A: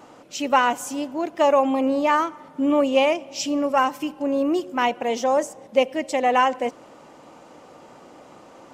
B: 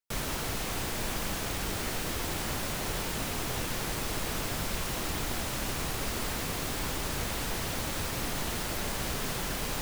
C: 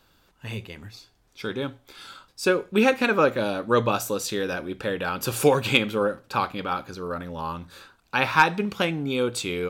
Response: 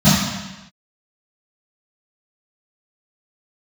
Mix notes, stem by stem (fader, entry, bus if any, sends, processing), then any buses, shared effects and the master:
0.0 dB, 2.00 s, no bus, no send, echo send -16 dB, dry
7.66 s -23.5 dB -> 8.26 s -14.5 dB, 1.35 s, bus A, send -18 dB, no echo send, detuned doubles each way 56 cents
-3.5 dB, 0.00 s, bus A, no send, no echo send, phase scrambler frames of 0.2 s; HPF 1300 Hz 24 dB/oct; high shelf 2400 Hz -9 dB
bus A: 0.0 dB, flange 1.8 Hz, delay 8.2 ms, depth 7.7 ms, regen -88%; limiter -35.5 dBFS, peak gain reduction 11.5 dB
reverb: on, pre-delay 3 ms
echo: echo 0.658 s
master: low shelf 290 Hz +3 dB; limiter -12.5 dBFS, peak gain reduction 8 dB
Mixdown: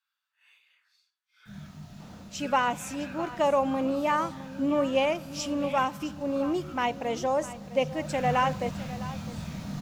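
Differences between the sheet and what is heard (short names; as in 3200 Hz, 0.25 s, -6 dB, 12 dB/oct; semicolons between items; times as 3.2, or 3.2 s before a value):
stem A 0.0 dB -> -6.5 dB; stem C -3.5 dB -> -11.0 dB; master: missing low shelf 290 Hz +3 dB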